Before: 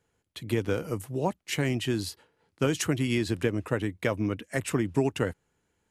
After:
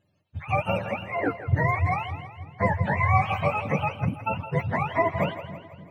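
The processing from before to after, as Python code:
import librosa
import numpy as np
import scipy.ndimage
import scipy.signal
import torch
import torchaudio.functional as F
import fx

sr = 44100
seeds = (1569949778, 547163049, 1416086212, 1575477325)

y = fx.octave_mirror(x, sr, pivot_hz=520.0)
y = fx.doubler(y, sr, ms=21.0, db=-6, at=(2.89, 3.55))
y = fx.spec_box(y, sr, start_s=4.05, length_s=0.22, low_hz=340.0, high_hz=7500.0, gain_db=-30)
y = fx.echo_split(y, sr, split_hz=400.0, low_ms=291, high_ms=164, feedback_pct=52, wet_db=-11.5)
y = F.gain(torch.from_numpy(y), 5.0).numpy()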